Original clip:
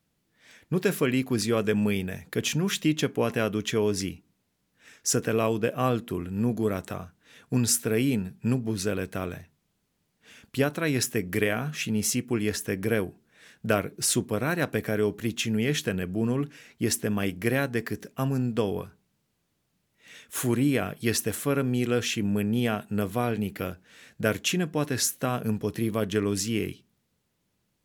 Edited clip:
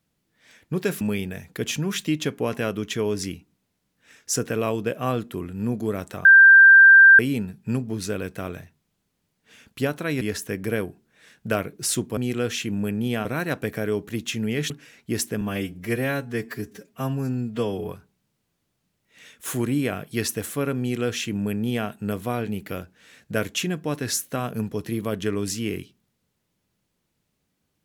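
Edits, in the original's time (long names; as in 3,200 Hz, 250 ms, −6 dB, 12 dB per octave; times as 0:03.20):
0:01.01–0:01.78: remove
0:07.02–0:07.96: beep over 1,580 Hz −7 dBFS
0:10.98–0:12.40: remove
0:15.81–0:16.42: remove
0:17.13–0:18.78: time-stretch 1.5×
0:21.69–0:22.77: duplicate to 0:14.36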